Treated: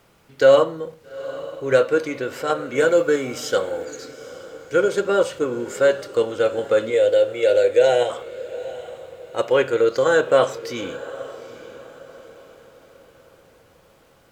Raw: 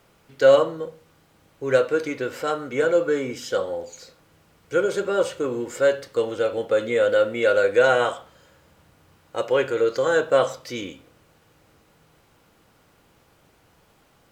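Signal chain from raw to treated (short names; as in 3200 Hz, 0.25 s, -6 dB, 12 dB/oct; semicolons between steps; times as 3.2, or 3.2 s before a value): 2.75–3.85 high shelf 4400 Hz +7 dB; 6.9–8.1 fixed phaser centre 500 Hz, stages 4; in parallel at -2.5 dB: level quantiser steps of 23 dB; on the sum: diffused feedback echo 0.84 s, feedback 41%, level -16 dB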